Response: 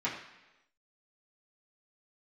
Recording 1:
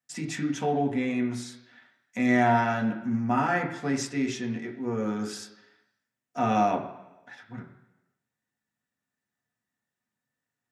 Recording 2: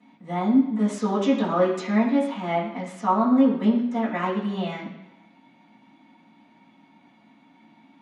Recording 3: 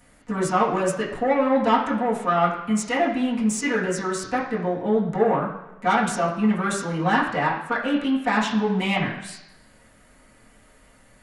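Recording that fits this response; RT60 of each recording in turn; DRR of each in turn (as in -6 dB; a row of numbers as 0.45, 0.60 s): 3; 1.0, 1.0, 1.0 s; 0.5, -16.0, -9.0 dB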